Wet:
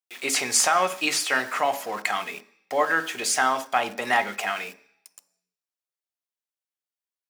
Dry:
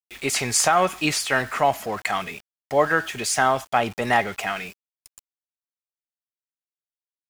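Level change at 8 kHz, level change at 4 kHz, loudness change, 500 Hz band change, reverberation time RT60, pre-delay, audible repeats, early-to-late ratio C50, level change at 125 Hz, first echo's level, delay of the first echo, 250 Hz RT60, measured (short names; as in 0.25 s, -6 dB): 0.0 dB, 0.0 dB, -1.5 dB, -4.5 dB, 0.50 s, 3 ms, none, 17.5 dB, -15.5 dB, none, none, 0.50 s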